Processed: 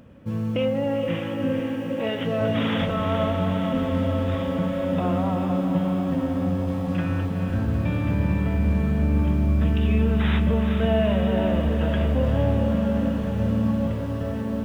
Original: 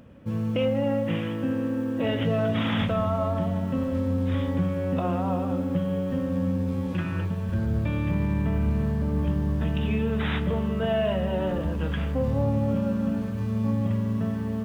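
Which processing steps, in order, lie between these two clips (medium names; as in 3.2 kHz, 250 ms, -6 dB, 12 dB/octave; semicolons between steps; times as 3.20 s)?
1.59–2.41 s: high-pass 200 Hz 6 dB/octave; echo that smears into a reverb 451 ms, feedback 75%, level -6.5 dB; trim +1 dB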